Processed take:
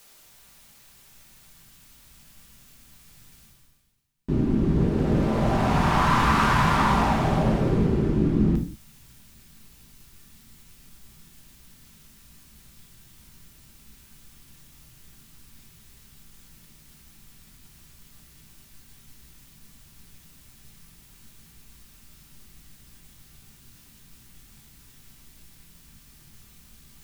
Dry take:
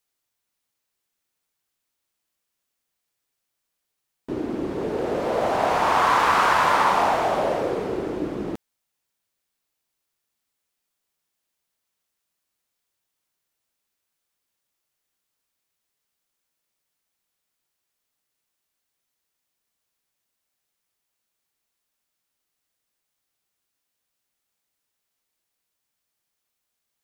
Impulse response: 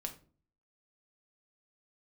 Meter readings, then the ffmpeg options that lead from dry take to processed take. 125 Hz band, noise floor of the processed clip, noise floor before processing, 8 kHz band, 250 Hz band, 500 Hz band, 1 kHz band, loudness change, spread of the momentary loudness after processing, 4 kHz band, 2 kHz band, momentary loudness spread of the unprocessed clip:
+15.5 dB, -54 dBFS, -81 dBFS, -0.5 dB, +7.5 dB, -4.0 dB, -4.0 dB, -0.5 dB, 4 LU, -1.5 dB, -2.5 dB, 12 LU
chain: -filter_complex "[0:a]asubboost=boost=12:cutoff=160,areverse,acompressor=mode=upward:threshold=-28dB:ratio=2.5,areverse[a];[1:a]atrim=start_sample=2205,afade=t=out:st=0.25:d=0.01,atrim=end_sample=11466[b];[a][b]afir=irnorm=-1:irlink=0"

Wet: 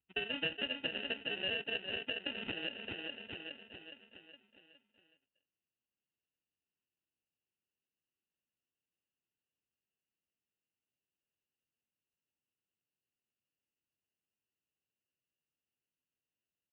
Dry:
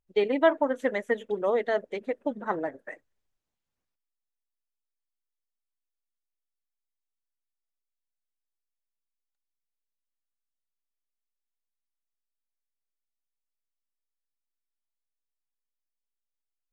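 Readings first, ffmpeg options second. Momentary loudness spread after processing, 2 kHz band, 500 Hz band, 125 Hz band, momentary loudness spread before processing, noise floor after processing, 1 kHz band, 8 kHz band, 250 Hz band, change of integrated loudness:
16 LU, -3.5 dB, -19.0 dB, -4.0 dB, 14 LU, under -85 dBFS, -20.0 dB, n/a, -14.0 dB, -10.0 dB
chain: -filter_complex "[0:a]asplit=2[a][b];[b]adelay=413,lowpass=f=1.5k:p=1,volume=-8dB,asplit=2[c][d];[d]adelay=413,lowpass=f=1.5k:p=1,volume=0.52,asplit=2[e][f];[f]adelay=413,lowpass=f=1.5k:p=1,volume=0.52,asplit=2[g][h];[h]adelay=413,lowpass=f=1.5k:p=1,volume=0.52,asplit=2[i][j];[j]adelay=413,lowpass=f=1.5k:p=1,volume=0.52,asplit=2[k][l];[l]adelay=413,lowpass=f=1.5k:p=1,volume=0.52[m];[a][c][e][g][i][k][m]amix=inputs=7:normalize=0,acrossover=split=110[n][o];[o]acrusher=samples=39:mix=1:aa=0.000001[p];[n][p]amix=inputs=2:normalize=0,acompressor=threshold=-37dB:ratio=3,highpass=65,equalizer=f=700:w=1.4:g=-5.5,aresample=8000,acrusher=bits=3:mode=log:mix=0:aa=0.000001,aresample=44100,lowpass=f=2.8k:t=q:w=9.1,volume=-5.5dB"

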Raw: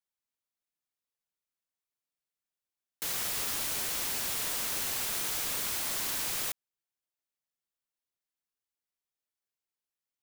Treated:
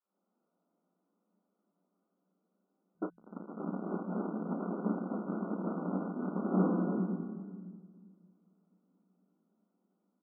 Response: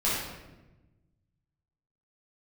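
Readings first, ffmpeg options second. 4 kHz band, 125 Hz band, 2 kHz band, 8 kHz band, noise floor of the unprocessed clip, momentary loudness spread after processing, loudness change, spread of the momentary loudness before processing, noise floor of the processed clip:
under -40 dB, +13.5 dB, -15.0 dB, under -40 dB, under -85 dBFS, 16 LU, -5.5 dB, 3 LU, -83 dBFS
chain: -filter_complex "[0:a]aeval=exprs='if(lt(val(0),0),0.251*val(0),val(0))':c=same[a];[1:a]atrim=start_sample=2205,asetrate=26460,aresample=44100[b];[a][b]afir=irnorm=-1:irlink=0,aresample=8000,asoftclip=type=hard:threshold=-18.5dB,aresample=44100,acompressor=threshold=-28dB:ratio=6,afftfilt=real='re*between(b*sr/4096,170,1500)':imag='im*between(b*sr/4096,170,1500)':win_size=4096:overlap=0.75,aecho=1:1:18|32:0.15|0.316,acrossover=split=630[c][d];[c]dynaudnorm=f=120:g=3:m=15dB[e];[e][d]amix=inputs=2:normalize=0,asubboost=boost=5:cutoff=220"

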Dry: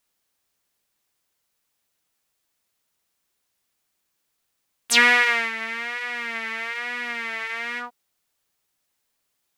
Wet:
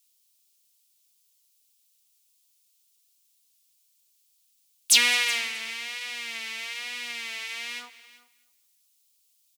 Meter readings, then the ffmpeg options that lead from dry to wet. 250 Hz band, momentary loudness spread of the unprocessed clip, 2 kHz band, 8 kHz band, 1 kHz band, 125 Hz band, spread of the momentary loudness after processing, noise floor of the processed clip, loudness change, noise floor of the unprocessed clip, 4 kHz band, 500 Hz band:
-12.5 dB, 13 LU, -7.5 dB, +5.5 dB, -12.5 dB, n/a, 15 LU, -68 dBFS, -3.5 dB, -76 dBFS, +2.0 dB, -12.5 dB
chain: -filter_complex "[0:a]asplit=2[a][b];[b]aecho=0:1:213|426|639:0.075|0.0352|0.0166[c];[a][c]amix=inputs=2:normalize=0,aexciter=amount=5.8:drive=7.1:freq=2.5k,asplit=2[d][e];[e]aecho=0:1:377:0.126[f];[d][f]amix=inputs=2:normalize=0,volume=-12.5dB"

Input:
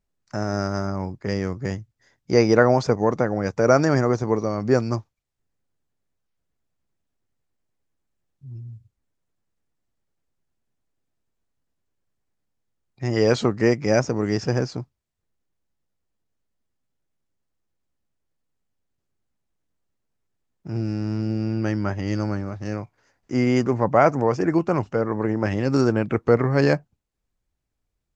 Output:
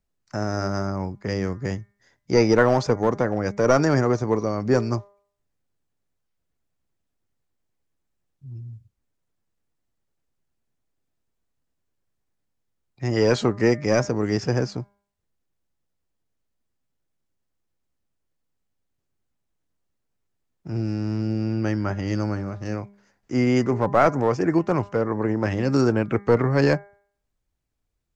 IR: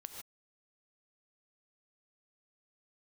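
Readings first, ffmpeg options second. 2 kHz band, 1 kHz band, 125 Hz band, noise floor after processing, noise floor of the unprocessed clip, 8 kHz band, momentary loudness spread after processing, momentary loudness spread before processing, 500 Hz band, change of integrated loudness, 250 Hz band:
-0.5 dB, -0.5 dB, -0.5 dB, -77 dBFS, -79 dBFS, n/a, 12 LU, 13 LU, -1.0 dB, -0.5 dB, -0.5 dB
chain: -filter_complex "[0:a]bandreject=f=201.6:t=h:w=4,bandreject=f=403.2:t=h:w=4,bandreject=f=604.8:t=h:w=4,bandreject=f=806.4:t=h:w=4,bandreject=f=1.008k:t=h:w=4,bandreject=f=1.2096k:t=h:w=4,bandreject=f=1.4112k:t=h:w=4,bandreject=f=1.6128k:t=h:w=4,bandreject=f=1.8144k:t=h:w=4,bandreject=f=2.016k:t=h:w=4,bandreject=f=2.2176k:t=h:w=4,acrossover=split=400|1200[a][b][c];[b]aeval=exprs='clip(val(0),-1,0.0841)':c=same[d];[a][d][c]amix=inputs=3:normalize=0"

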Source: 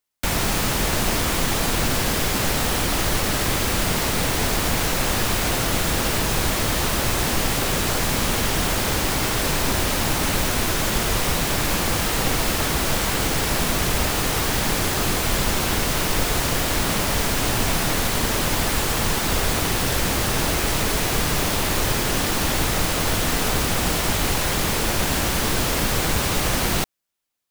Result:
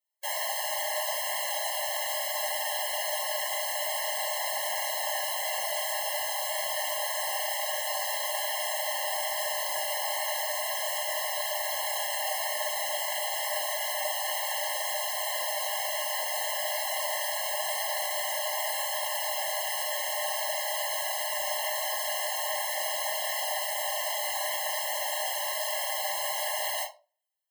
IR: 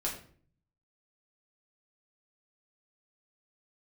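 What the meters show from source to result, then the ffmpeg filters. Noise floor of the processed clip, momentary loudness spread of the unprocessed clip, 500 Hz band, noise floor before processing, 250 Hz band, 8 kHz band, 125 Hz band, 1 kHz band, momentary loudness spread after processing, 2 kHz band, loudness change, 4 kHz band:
-32 dBFS, 0 LU, -7.5 dB, -23 dBFS, under -40 dB, -8.5 dB, under -40 dB, -6.5 dB, 0 LU, -8.5 dB, -8.0 dB, -8.0 dB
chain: -filter_complex "[0:a]highshelf=f=12k:g=7.5[a];[1:a]atrim=start_sample=2205,asetrate=83790,aresample=44100[b];[a][b]afir=irnorm=-1:irlink=0,afftfilt=real='re*eq(mod(floor(b*sr/1024/550),2),1)':imag='im*eq(mod(floor(b*sr/1024/550),2),1)':win_size=1024:overlap=0.75,volume=-3.5dB"

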